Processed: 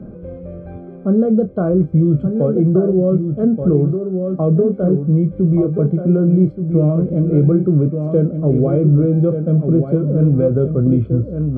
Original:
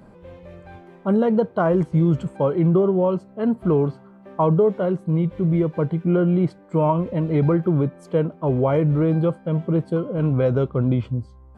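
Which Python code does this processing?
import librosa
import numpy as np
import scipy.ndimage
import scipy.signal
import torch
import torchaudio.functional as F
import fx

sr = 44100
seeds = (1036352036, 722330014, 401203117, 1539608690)

p1 = fx.rider(x, sr, range_db=10, speed_s=0.5)
p2 = x + (p1 * 10.0 ** (0.5 / 20.0))
p3 = np.convolve(p2, np.full(47, 1.0 / 47))[:len(p2)]
p4 = fx.doubler(p3, sr, ms=27.0, db=-9)
p5 = p4 + 10.0 ** (-8.0 / 20.0) * np.pad(p4, (int(1177 * sr / 1000.0), 0))[:len(p4)]
y = fx.band_squash(p5, sr, depth_pct=40)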